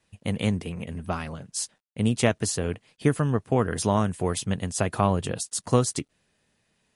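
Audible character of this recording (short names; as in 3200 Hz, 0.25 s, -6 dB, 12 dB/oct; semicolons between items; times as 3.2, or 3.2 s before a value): a quantiser's noise floor 12-bit, dither none; MP3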